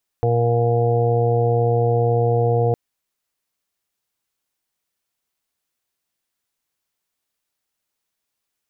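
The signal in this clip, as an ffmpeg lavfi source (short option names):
-f lavfi -i "aevalsrc='0.126*sin(2*PI*118*t)+0.0188*sin(2*PI*236*t)+0.0299*sin(2*PI*354*t)+0.119*sin(2*PI*472*t)+0.0141*sin(2*PI*590*t)+0.0631*sin(2*PI*708*t)+0.02*sin(2*PI*826*t)':d=2.51:s=44100"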